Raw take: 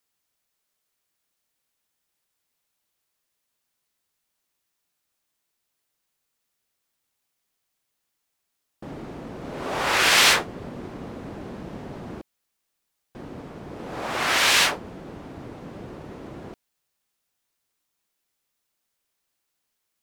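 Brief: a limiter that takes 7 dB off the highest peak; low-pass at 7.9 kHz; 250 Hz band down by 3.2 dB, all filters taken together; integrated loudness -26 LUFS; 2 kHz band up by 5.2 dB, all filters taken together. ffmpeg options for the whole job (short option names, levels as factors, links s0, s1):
-af "lowpass=7900,equalizer=f=250:t=o:g=-4.5,equalizer=f=2000:t=o:g=6.5,volume=0.473,alimiter=limit=0.168:level=0:latency=1"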